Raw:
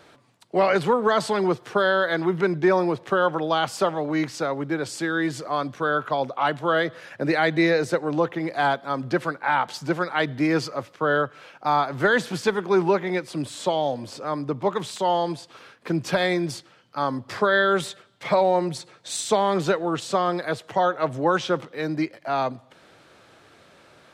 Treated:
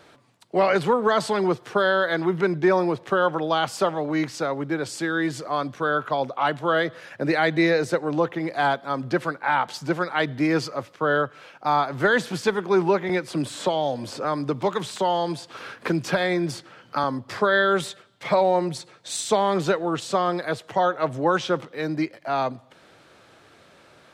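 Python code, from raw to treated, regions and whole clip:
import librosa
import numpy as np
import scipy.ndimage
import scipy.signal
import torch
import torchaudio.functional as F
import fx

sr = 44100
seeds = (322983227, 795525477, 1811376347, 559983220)

y = fx.chain(x, sr, fx.peak_eq(hz=1500.0, db=2.5, octaves=0.34),
    fx.band_squash(depth_pct=70), at=(13.09, 17.04))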